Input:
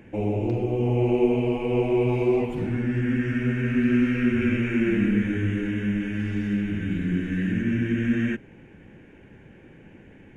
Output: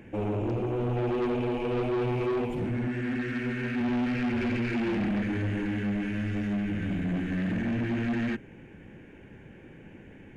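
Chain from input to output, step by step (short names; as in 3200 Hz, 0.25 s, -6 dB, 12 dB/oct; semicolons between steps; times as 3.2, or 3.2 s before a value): 2.88–3.81 low shelf 160 Hz -12 dB; soft clip -25 dBFS, distortion -9 dB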